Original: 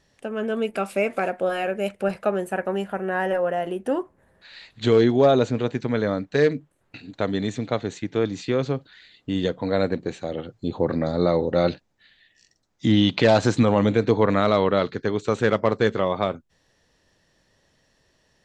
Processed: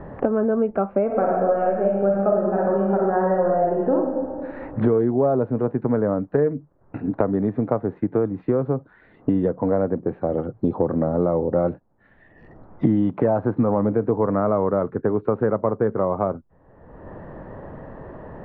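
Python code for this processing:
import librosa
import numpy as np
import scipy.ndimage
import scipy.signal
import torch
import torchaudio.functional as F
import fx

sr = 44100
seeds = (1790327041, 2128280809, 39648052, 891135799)

y = fx.reverb_throw(x, sr, start_s=1.05, length_s=2.9, rt60_s=1.1, drr_db=-2.5)
y = scipy.signal.sosfilt(scipy.signal.butter(4, 1200.0, 'lowpass', fs=sr, output='sos'), y)
y = fx.band_squash(y, sr, depth_pct=100)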